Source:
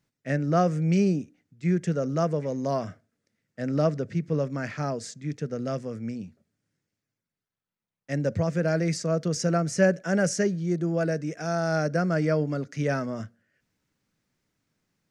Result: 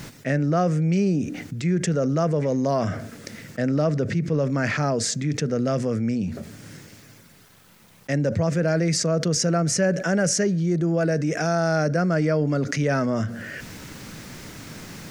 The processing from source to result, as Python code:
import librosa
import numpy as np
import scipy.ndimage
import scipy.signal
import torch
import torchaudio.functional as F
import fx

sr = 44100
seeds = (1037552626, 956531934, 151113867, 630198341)

y = fx.env_flatten(x, sr, amount_pct=70)
y = F.gain(torch.from_numpy(y), -2.0).numpy()